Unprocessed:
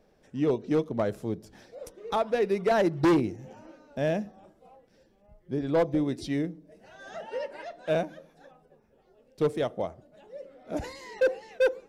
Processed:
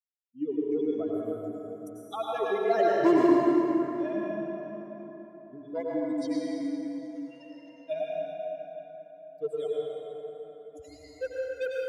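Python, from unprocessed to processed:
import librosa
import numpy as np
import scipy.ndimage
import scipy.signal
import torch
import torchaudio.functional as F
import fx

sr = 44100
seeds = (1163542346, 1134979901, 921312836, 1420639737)

y = fx.bin_expand(x, sr, power=3.0)
y = scipy.signal.sosfilt(scipy.signal.butter(2, 200.0, 'highpass', fs=sr, output='sos'), y)
y = fx.low_shelf(y, sr, hz=340.0, db=3.5)
y = y + 0.48 * np.pad(y, (int(2.9 * sr / 1000.0), 0))[:len(y)]
y = fx.rev_plate(y, sr, seeds[0], rt60_s=4.1, hf_ratio=0.55, predelay_ms=80, drr_db=-5.5)
y = y * librosa.db_to_amplitude(-3.5)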